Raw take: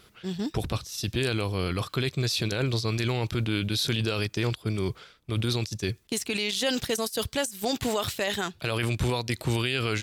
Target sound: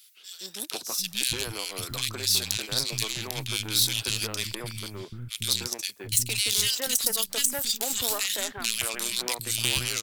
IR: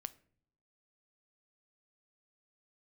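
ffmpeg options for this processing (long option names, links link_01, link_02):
-filter_complex "[0:a]aeval=exprs='0.2*(cos(1*acos(clip(val(0)/0.2,-1,1)))-cos(1*PI/2))+0.0398*(cos(3*acos(clip(val(0)/0.2,-1,1)))-cos(3*PI/2))+0.01*(cos(6*acos(clip(val(0)/0.2,-1,1)))-cos(6*PI/2))':channel_layout=same,acrossover=split=240|1800[link_01][link_02][link_03];[link_02]adelay=170[link_04];[link_01]adelay=750[link_05];[link_05][link_04][link_03]amix=inputs=3:normalize=0,crystalizer=i=7:c=0,volume=-3dB"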